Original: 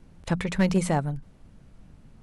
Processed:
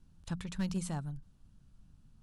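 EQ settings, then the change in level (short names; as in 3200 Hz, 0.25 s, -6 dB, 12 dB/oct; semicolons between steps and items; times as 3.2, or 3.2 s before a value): bell 520 Hz -13 dB 1.8 oct; bell 2100 Hz -11 dB 0.52 oct; -8.0 dB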